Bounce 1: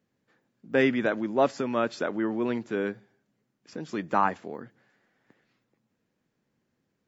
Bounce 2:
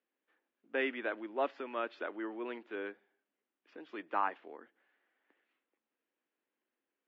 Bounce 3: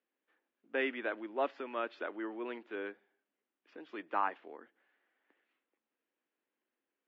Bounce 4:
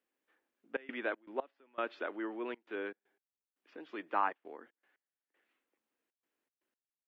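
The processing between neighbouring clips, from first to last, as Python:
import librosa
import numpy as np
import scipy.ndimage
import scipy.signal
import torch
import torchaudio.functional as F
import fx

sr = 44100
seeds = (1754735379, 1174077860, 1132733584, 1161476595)

y1 = scipy.signal.sosfilt(scipy.signal.cheby1(3, 1.0, [300.0, 3100.0], 'bandpass', fs=sr, output='sos'), x)
y1 = fx.tilt_shelf(y1, sr, db=-3.5, hz=970.0)
y1 = y1 * librosa.db_to_amplitude(-8.5)
y2 = y1
y3 = fx.step_gate(y2, sr, bpm=118, pattern='xxxxxx.xx.x...', floor_db=-24.0, edge_ms=4.5)
y3 = y3 * librosa.db_to_amplitude(1.0)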